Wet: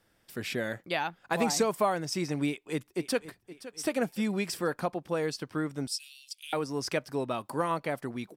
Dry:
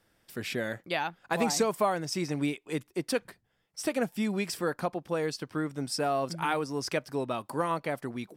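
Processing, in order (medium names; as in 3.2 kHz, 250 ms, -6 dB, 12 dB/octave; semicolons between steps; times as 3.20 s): 2.47–3.27 s: echo throw 520 ms, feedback 45%, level -15 dB; 5.87–6.53 s: steep high-pass 2.7 kHz 48 dB/octave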